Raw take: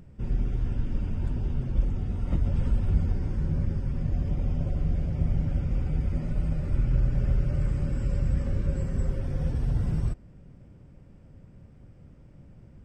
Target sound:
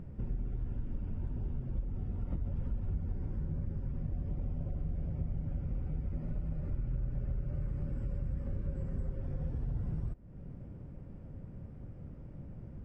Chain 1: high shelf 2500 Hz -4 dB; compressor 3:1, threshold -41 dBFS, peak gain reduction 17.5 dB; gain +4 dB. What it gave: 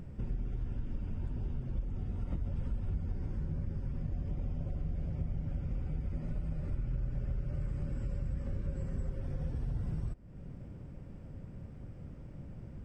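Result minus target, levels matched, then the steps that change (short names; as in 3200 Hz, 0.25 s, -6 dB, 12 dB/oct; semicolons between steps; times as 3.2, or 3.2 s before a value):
2000 Hz band +4.0 dB
change: high shelf 2500 Hz -16 dB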